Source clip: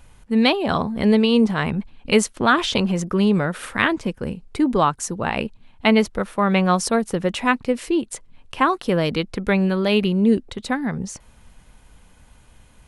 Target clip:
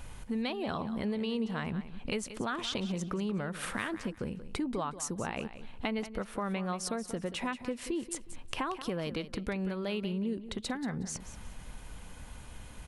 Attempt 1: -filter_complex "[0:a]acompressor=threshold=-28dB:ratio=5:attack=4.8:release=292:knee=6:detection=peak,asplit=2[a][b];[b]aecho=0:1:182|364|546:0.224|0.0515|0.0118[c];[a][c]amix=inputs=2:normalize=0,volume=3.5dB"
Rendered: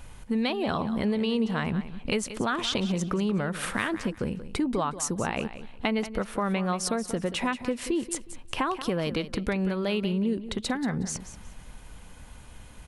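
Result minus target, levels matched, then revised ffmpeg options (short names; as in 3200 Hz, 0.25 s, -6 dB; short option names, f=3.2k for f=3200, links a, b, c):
compressor: peak gain reduction -7 dB
-filter_complex "[0:a]acompressor=threshold=-36.5dB:ratio=5:attack=4.8:release=292:knee=6:detection=peak,asplit=2[a][b];[b]aecho=0:1:182|364|546:0.224|0.0515|0.0118[c];[a][c]amix=inputs=2:normalize=0,volume=3.5dB"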